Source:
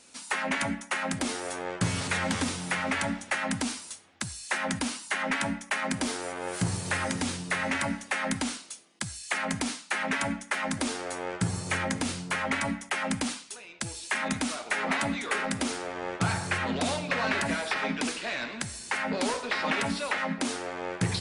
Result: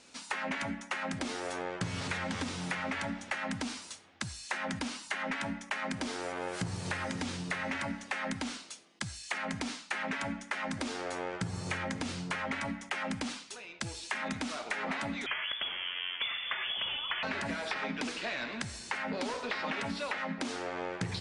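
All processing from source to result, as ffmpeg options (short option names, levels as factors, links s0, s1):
-filter_complex "[0:a]asettb=1/sr,asplit=3[s0][s1][s2];[s0]atrim=end=15.264[s3];[s1]atrim=start=15.26:end=17.23,asetpts=PTS-STARTPTS,afade=t=in:d=0.004:c=qsin,afade=t=out:st=1.966:d=0.004:c=qsin,highpass=93,lowpass=f=3100:t=q:w=0.5098,lowpass=f=3100:t=q:w=0.6013,lowpass=f=3100:t=q:w=0.9,lowpass=f=3100:t=q:w=2.563,afreqshift=-3600[s4];[s2]atrim=start=17.226[s5];[s3][s4]acrossfade=d=0.004:c1=hsin:c2=qsin[s6];[s6][s5]acrossfade=d=0.004:c1=qsin:c2=hsin,lowpass=6100,acompressor=threshold=0.0251:ratio=6"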